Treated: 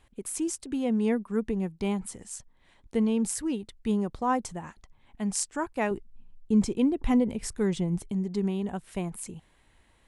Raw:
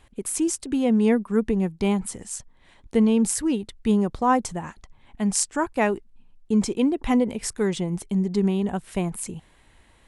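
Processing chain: 5.91–8.12 low shelf 220 Hz +9.5 dB; gain -6.5 dB

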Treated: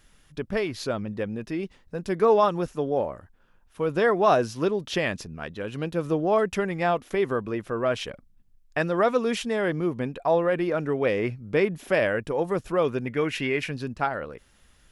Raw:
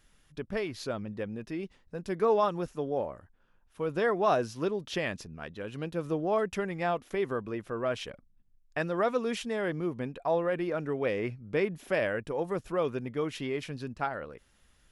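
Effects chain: spectral gain 13.07–13.71, 1400–2900 Hz +7 dB; gain +6 dB

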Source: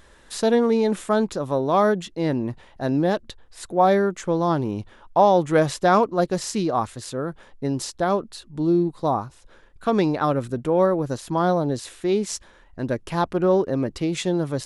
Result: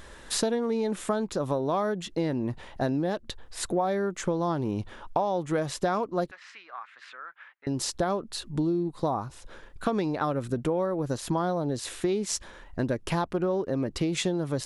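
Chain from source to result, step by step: compressor 10:1, threshold -29 dBFS, peak gain reduction 18 dB; 6.31–7.67 Butterworth band-pass 1800 Hz, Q 1.4; gain +5 dB

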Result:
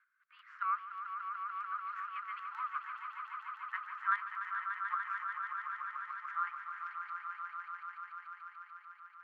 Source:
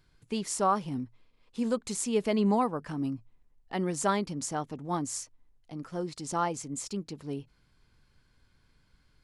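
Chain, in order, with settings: in parallel at -10.5 dB: decimation with a swept rate 9×, swing 100% 0.39 Hz; on the sum: LPF 1600 Hz 24 dB/oct; chopper 5.1 Hz, depth 60%, duty 20%; steep high-pass 1200 Hz 72 dB/oct; on a send: swelling echo 0.146 s, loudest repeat 5, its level -8 dB; on the sum: gain +7.5 dB

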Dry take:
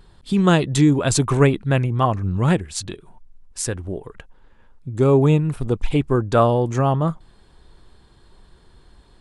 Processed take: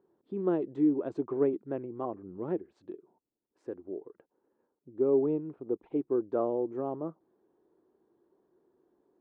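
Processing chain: ladder band-pass 400 Hz, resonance 50%; gain -1.5 dB

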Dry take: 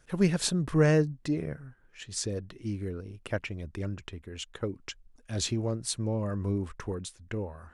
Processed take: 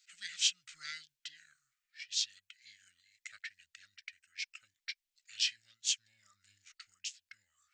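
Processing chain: inverse Chebyshev high-pass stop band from 1100 Hz, stop band 50 dB; formant shift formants -5 st; gain +1.5 dB

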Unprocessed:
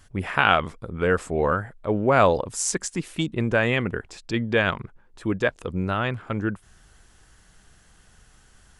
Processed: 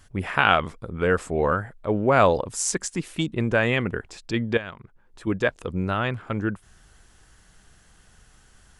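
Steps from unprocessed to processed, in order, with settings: 4.57–5.27 compressor 2:1, threshold -43 dBFS, peak gain reduction 14 dB

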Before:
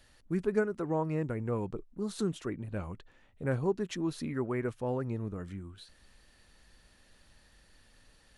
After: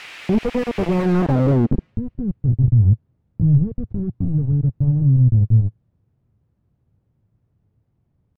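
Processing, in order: low shelf 150 Hz +9.5 dB; compressor 2:1, threshold -44 dBFS, peak gain reduction 12.5 dB; pitch shift +2.5 st; companded quantiser 2-bit; added noise blue -44 dBFS; low-pass sweep 2400 Hz -> 110 Hz, 0.94–1.96; on a send: thin delay 0.221 s, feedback 33%, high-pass 3800 Hz, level -15 dB; on the sum: maximiser +23.5 dB; slew limiter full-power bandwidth 120 Hz; gain -6 dB

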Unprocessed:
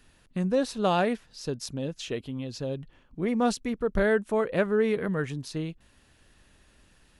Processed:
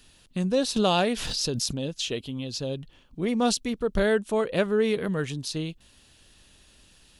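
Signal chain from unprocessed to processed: resonant high shelf 2500 Hz +6.5 dB, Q 1.5; 0.76–1.82 backwards sustainer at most 22 dB/s; gain +1 dB

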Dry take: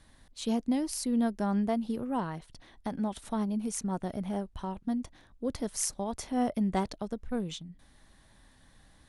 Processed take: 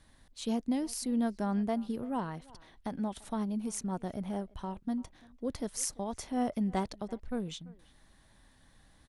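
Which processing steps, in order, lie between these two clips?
speakerphone echo 0.34 s, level -21 dB; gain -2.5 dB

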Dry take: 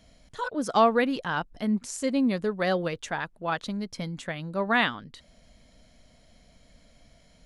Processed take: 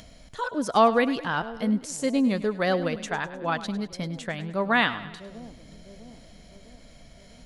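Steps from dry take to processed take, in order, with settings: upward compressor, threshold -43 dBFS; split-band echo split 560 Hz, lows 0.653 s, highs 0.102 s, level -14.5 dB; gain +1.5 dB

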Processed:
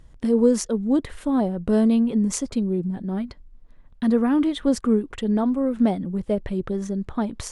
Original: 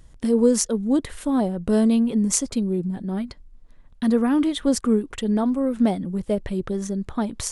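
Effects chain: high shelf 4900 Hz -10 dB

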